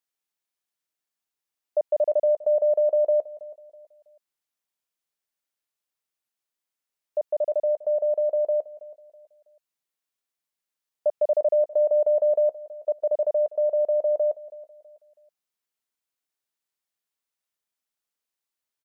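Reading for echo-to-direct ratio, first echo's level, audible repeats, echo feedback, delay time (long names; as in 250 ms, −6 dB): −17.5 dB, −18.0 dB, 2, 34%, 325 ms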